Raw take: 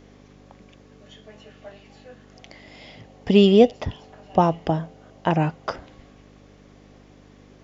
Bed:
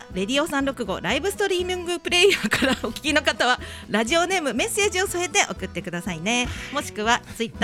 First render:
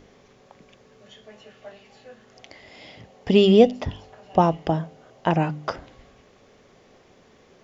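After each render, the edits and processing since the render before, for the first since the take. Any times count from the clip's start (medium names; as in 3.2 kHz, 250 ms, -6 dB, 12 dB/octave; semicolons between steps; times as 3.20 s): de-hum 50 Hz, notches 6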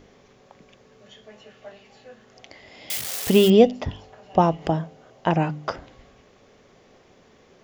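2.90–3.50 s: zero-crossing glitches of -16.5 dBFS; 4.38–4.83 s: upward compressor, threshold -30 dBFS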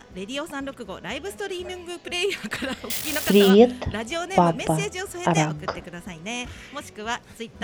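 add bed -8.5 dB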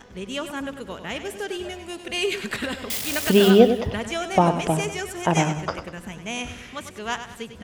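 feedback delay 98 ms, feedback 43%, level -10 dB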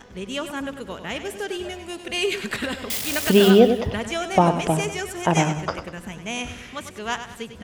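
trim +1 dB; peak limiter -3 dBFS, peak gain reduction 2 dB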